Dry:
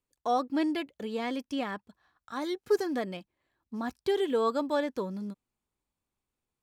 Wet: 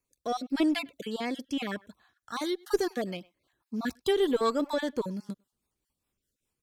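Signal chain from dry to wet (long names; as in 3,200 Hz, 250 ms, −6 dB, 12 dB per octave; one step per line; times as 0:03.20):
time-frequency cells dropped at random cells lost 25%
high-shelf EQ 3,500 Hz +7 dB
far-end echo of a speakerphone 100 ms, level −26 dB
rotating-speaker cabinet horn 0.9 Hz, later 5 Hz, at 0:01.85
in parallel at −5 dB: asymmetric clip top −32 dBFS
on the sum: level +1 dB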